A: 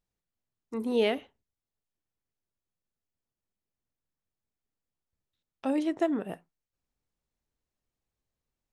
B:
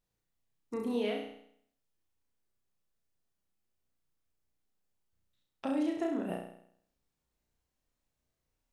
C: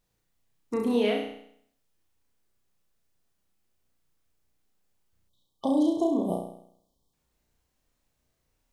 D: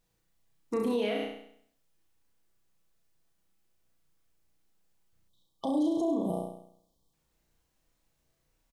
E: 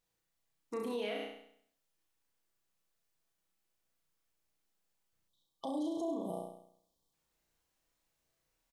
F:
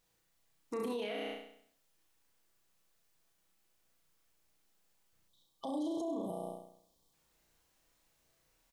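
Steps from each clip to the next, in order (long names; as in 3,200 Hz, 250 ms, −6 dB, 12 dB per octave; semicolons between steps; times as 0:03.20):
downward compressor 6 to 1, threshold −33 dBFS, peak gain reduction 12 dB; on a send: flutter between parallel walls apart 5.7 metres, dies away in 0.66 s
time-frequency box erased 0:05.29–0:07.13, 1,200–3,000 Hz; level +8 dB
comb filter 6.1 ms, depth 31%; brickwall limiter −21.5 dBFS, peak gain reduction 8.5 dB
speech leveller 2 s; low-shelf EQ 320 Hz −9 dB; level −3.5 dB
brickwall limiter −38 dBFS, peak gain reduction 11 dB; level +7.5 dB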